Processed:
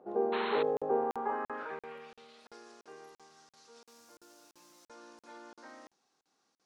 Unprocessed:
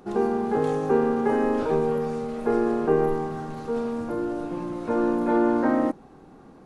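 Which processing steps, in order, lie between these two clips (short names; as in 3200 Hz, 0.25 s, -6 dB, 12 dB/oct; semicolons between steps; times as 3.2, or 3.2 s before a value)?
0.32–0.63 painted sound noise 870–4300 Hz -19 dBFS; 3.82–4.85 added noise violet -50 dBFS; band-pass sweep 570 Hz -> 5600 Hz, 0.82–2.63; crackling interface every 0.34 s, samples 2048, zero, from 0.77; gain -1.5 dB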